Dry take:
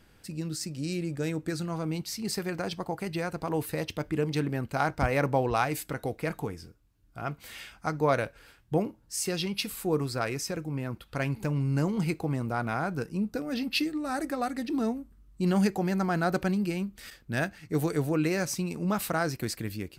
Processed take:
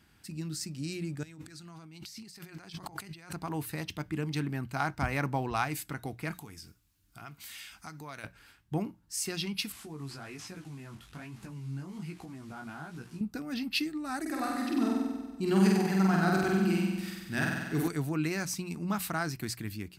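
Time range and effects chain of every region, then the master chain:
1.23–3.34 bell 4800 Hz +6.5 dB 3 oct + negative-ratio compressor -44 dBFS
6.33–8.24 high shelf 2300 Hz +11.5 dB + compressor 2.5:1, threshold -43 dBFS
9.72–13.21 delta modulation 64 kbps, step -43.5 dBFS + compressor, threshold -31 dBFS + chorus 1.2 Hz, delay 16.5 ms, depth 5.6 ms
14.21–17.88 bell 380 Hz +5 dB 0.21 oct + flutter echo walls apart 8.1 m, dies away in 1.3 s
whole clip: HPF 55 Hz; bell 510 Hz -12.5 dB 0.61 oct; notches 60/120/180 Hz; gain -2 dB

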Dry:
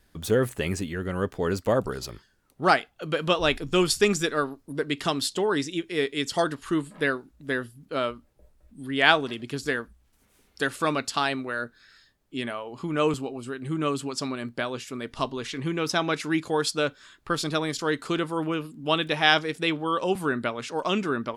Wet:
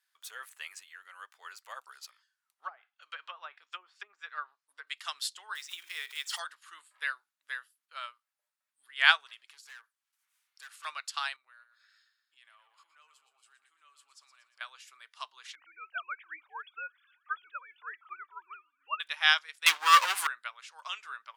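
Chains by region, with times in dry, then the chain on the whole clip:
2.09–4.87 de-esser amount 65% + treble ducked by the level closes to 480 Hz, closed at -16.5 dBFS + low shelf 180 Hz -5 dB
5.55–6.39 block floating point 5-bit + backwards sustainer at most 67 dB/s
9.51–10.85 overloaded stage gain 28 dB + compressor 2:1, threshold -36 dBFS
11.36–14.61 compressor 5:1, threshold -41 dBFS + feedback echo 0.118 s, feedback 54%, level -10.5 dB
15.55–19 sine-wave speech + thin delay 0.307 s, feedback 61%, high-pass 2100 Hz, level -21.5 dB
19.66–20.27 sample leveller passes 5 + doubler 12 ms -12.5 dB
whole clip: HPF 1100 Hz 24 dB/oct; upward expander 1.5:1, over -39 dBFS

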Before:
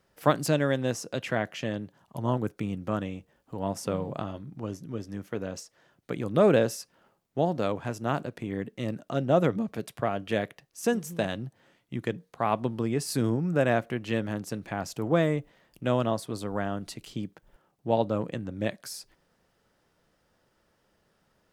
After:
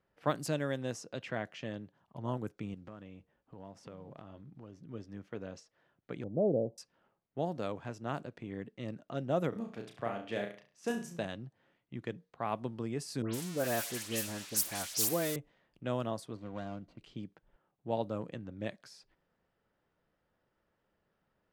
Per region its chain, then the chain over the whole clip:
2.74–4.78 block floating point 7-bit + compressor 3:1, threshold -38 dBFS
6.24–6.78 switching spikes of -24 dBFS + steep low-pass 750 Hz 48 dB/oct
9.49–11.19 low shelf 120 Hz -8 dB + flutter echo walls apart 5.9 m, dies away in 0.39 s
13.22–15.36 switching spikes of -16.5 dBFS + bell 150 Hz -6 dB 0.57 oct + dispersion highs, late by 0.122 s, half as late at 2500 Hz
16.35–16.98 median filter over 25 samples + notch comb 430 Hz
whole clip: low-pass opened by the level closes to 2800 Hz, open at -20.5 dBFS; high shelf 9700 Hz +6.5 dB; gain -9 dB

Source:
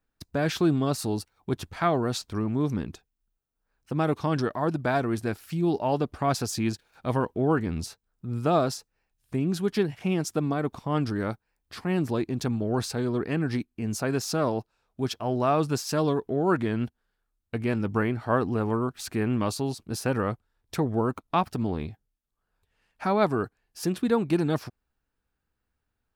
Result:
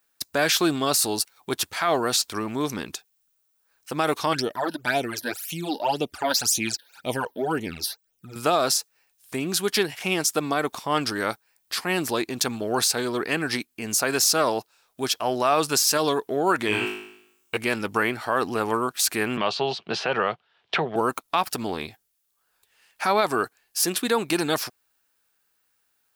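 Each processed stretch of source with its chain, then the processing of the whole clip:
4.33–8.36 notch 1100 Hz, Q 6.4 + phaser stages 12, 1.9 Hz, lowest notch 120–1600 Hz
16.67–17.57 ripple EQ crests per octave 0.71, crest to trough 7 dB + flutter echo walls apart 3.3 m, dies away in 0.72 s
19.37–20.96 speaker cabinet 120–3700 Hz, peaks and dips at 160 Hz +7 dB, 280 Hz -10 dB, 390 Hz +3 dB, 690 Hz +6 dB, 3000 Hz +6 dB + three-band squash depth 70%
whole clip: tilt +3.5 dB/oct; limiter -18 dBFS; tone controls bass -6 dB, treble 0 dB; gain +7.5 dB

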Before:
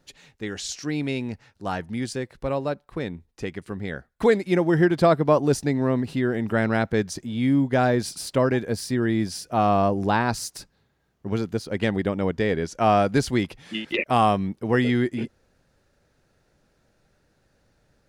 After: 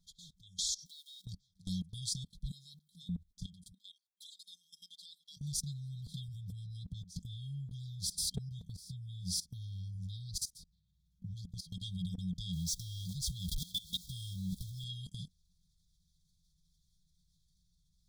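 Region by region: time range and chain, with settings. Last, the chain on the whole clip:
0.85–1.26 G.711 law mismatch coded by mu + Chebyshev high-pass 1400 Hz, order 3
2.51–3.09 HPF 150 Hz + tilt +2.5 dB/oct + notches 50/100/150/200/250/300/350 Hz
3.72–5.37 elliptic high-pass 480 Hz, stop band 80 dB + high shelf 3200 Hz -4.5 dB
6.28–11.57 bell 85 Hz +10.5 dB 2.5 oct + tremolo triangle 1.1 Hz, depth 80%
12.53–14.84 zero-crossing step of -33 dBFS + bell 76 Hz +5 dB 1.6 oct
whole clip: FFT band-reject 190–3200 Hz; level quantiser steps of 19 dB; comb 4.3 ms, depth 64%; gain +2 dB

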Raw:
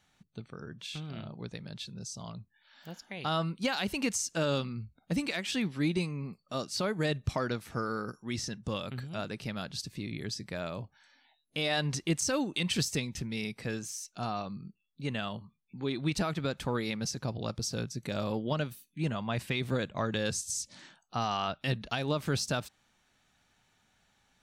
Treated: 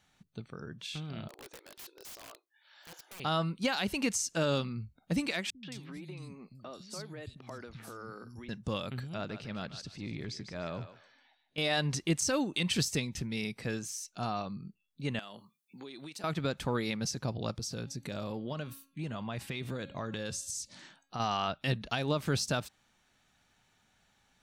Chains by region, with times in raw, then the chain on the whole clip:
1.28–3.2 brick-wall FIR high-pass 300 Hz + wrapped overs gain 42 dB
5.5–8.49 compressor 10:1, threshold -39 dBFS + three bands offset in time lows, mids, highs 0.13/0.22 s, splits 210/3500 Hz
9.14–11.58 transient shaper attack -10 dB, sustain 0 dB + air absorption 79 m + thinning echo 0.148 s, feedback 30%, high-pass 550 Hz, level -10 dB
15.19–16.24 HPF 270 Hz + high shelf 5000 Hz +11.5 dB + compressor 12:1, threshold -41 dBFS
17.56–21.2 de-hum 273.8 Hz, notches 17 + compressor 3:1, threshold -35 dBFS
whole clip: dry

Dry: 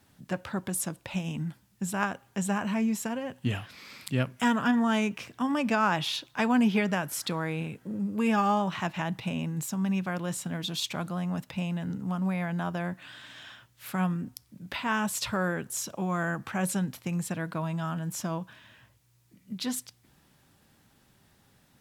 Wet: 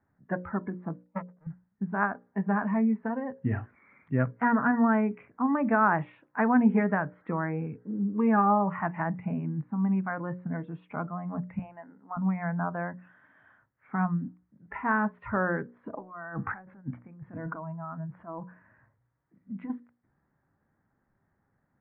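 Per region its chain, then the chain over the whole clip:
1.04–1.47 half-waves squared off + HPF 350 Hz 6 dB/oct + gate -32 dBFS, range -39 dB
11.59–12.17 HPF 450 Hz + mismatched tape noise reduction decoder only
15.83–19.7 LPF 2900 Hz + negative-ratio compressor -37 dBFS
whole clip: spectral noise reduction 12 dB; steep low-pass 1900 Hz 48 dB/oct; notches 60/120/180/240/300/360/420/480/540/600 Hz; gain +2.5 dB

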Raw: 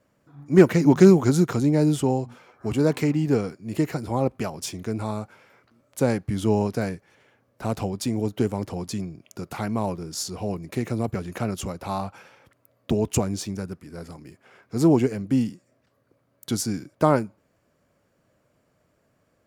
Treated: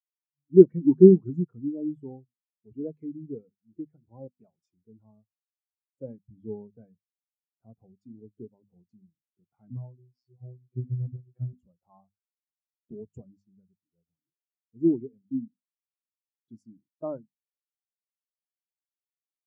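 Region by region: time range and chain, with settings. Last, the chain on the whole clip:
9.7–11.53 LPF 5500 Hz 24 dB/oct + low shelf 370 Hz +10.5 dB + robotiser 125 Hz
whole clip: notches 50/100/150/200/250 Hz; spectral expander 2.5:1; gain +1 dB

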